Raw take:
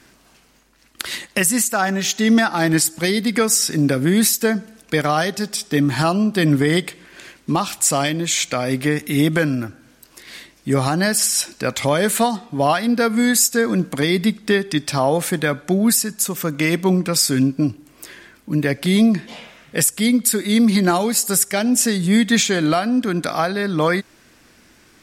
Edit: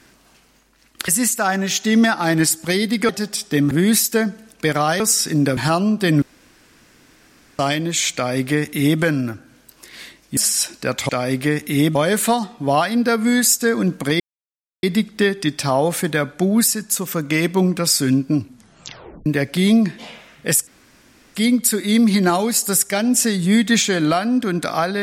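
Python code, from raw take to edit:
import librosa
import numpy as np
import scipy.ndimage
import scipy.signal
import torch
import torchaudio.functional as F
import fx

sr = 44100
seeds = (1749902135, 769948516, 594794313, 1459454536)

y = fx.edit(x, sr, fx.cut(start_s=1.08, length_s=0.34),
    fx.swap(start_s=3.43, length_s=0.57, other_s=5.29, other_length_s=0.62),
    fx.room_tone_fill(start_s=6.56, length_s=1.37),
    fx.duplicate(start_s=8.49, length_s=0.86, to_s=11.87),
    fx.cut(start_s=10.71, length_s=0.44),
    fx.insert_silence(at_s=14.12, length_s=0.63),
    fx.tape_stop(start_s=17.69, length_s=0.86),
    fx.insert_room_tone(at_s=19.96, length_s=0.68), tone=tone)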